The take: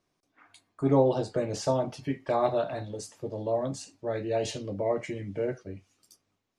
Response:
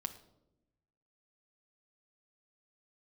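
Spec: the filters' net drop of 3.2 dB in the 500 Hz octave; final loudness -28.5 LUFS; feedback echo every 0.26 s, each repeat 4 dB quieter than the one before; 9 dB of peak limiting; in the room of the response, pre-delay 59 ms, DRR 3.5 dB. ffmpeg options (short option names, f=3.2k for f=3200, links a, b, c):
-filter_complex "[0:a]equalizer=f=500:t=o:g=-4,alimiter=limit=-21.5dB:level=0:latency=1,aecho=1:1:260|520|780|1040|1300|1560|1820|2080|2340:0.631|0.398|0.25|0.158|0.0994|0.0626|0.0394|0.0249|0.0157,asplit=2[a][b];[1:a]atrim=start_sample=2205,adelay=59[c];[b][c]afir=irnorm=-1:irlink=0,volume=-2dB[d];[a][d]amix=inputs=2:normalize=0,volume=2dB"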